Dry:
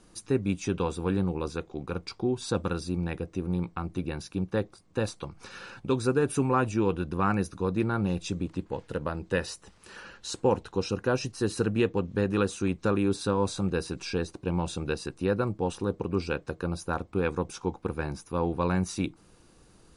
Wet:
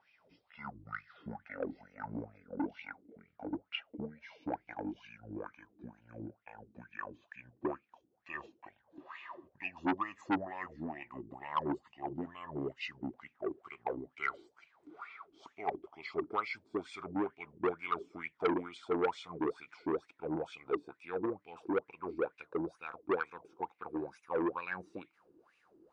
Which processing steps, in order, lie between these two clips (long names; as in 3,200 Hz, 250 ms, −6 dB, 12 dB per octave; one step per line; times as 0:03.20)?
gliding playback speed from 52% → 102%
LFO wah 2.2 Hz 300–2,500 Hz, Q 8
saturating transformer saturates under 1,300 Hz
level +7 dB